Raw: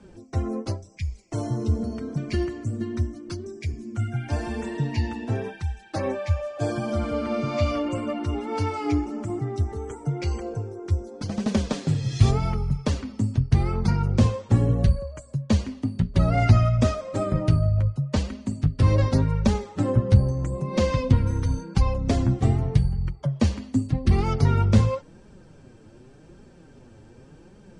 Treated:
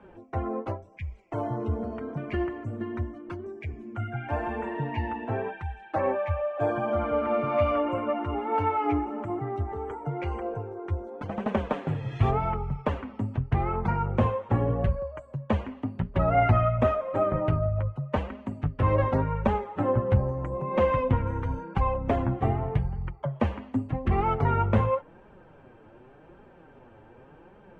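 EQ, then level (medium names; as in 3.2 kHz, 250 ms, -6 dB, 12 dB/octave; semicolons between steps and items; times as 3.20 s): dynamic bell 4.5 kHz, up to -5 dB, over -51 dBFS, Q 1.1; FFT filter 210 Hz 0 dB, 880 Hz +13 dB, 3 kHz +4 dB, 4.8 kHz -16 dB; -6.5 dB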